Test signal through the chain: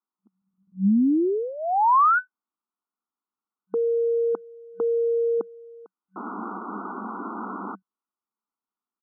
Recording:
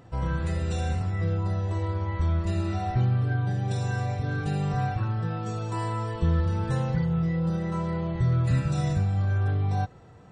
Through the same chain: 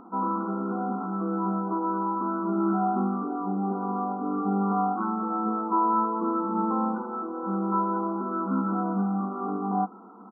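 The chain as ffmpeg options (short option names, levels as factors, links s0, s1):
-af "aecho=1:1:0.9:0.8,afftfilt=real='re*between(b*sr/4096,190,1500)':imag='im*between(b*sr/4096,190,1500)':win_size=4096:overlap=0.75,volume=2.24"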